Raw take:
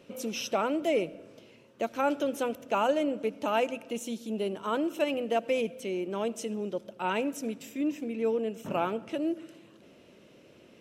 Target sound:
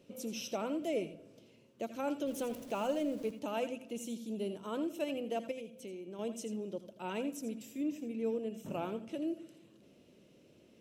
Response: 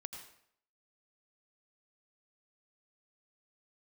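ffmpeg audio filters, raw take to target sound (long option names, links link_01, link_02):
-filter_complex "[0:a]asettb=1/sr,asplit=3[link_01][link_02][link_03];[link_01]atrim=end=2.274[link_04];[link_02]atrim=start=2.27:end=3.31,asetpts=PTS-STARTPTS,afade=type=in:duration=0.004:curve=qsin,afade=type=out:start_time=1.036:duration=0.004:curve=qsin,aeval=exprs='val(0)+0.5*0.00891*sgn(val(0))':channel_layout=same[link_05];[link_03]atrim=start=3.306[link_06];[link_04][link_05]acrossfade=duration=0.004:curve1=hsin:curve2=qsin[link_07];[link_07][link_06]acrossfade=duration=0.004:curve1=qsin:curve2=hsin,equalizer=frequency=1400:width_type=o:width=2.3:gain=-9,asettb=1/sr,asplit=3[link_08][link_09][link_10];[link_08]atrim=end=5.514[link_11];[link_09]atrim=start=5.51:end=6.19,asetpts=PTS-STARTPTS,afade=type=in:duration=0.004:curve=qsin,afade=type=out:start_time=0.676:duration=0.004:curve=qsin,acompressor=threshold=-39dB:ratio=4[link_12];[link_10]atrim=start=6.186[link_13];[link_11][link_12]acrossfade=duration=0.004:curve1=hsin:curve2=qsin[link_14];[link_14][link_13]acrossfade=duration=0.004:curve1=qsin:curve2=hsin[link_15];[1:a]atrim=start_sample=2205,atrim=end_sample=3969[link_16];[link_15][link_16]afir=irnorm=-1:irlink=0"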